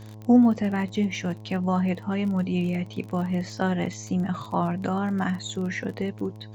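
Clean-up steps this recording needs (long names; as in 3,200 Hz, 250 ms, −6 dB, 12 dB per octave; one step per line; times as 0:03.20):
click removal
hum removal 107.5 Hz, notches 10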